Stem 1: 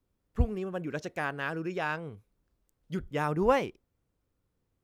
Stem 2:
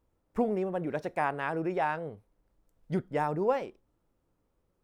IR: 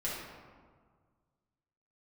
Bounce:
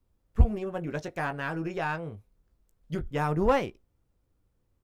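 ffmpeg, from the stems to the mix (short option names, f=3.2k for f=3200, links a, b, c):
-filter_complex "[0:a]lowshelf=f=87:g=11.5,aeval=exprs='0.447*(cos(1*acos(clip(val(0)/0.447,-1,1)))-cos(1*PI/2))+0.0178*(cos(8*acos(clip(val(0)/0.447,-1,1)))-cos(8*PI/2))':c=same,volume=-0.5dB[a];[1:a]volume=-1,adelay=17,volume=-7.5dB[b];[a][b]amix=inputs=2:normalize=0"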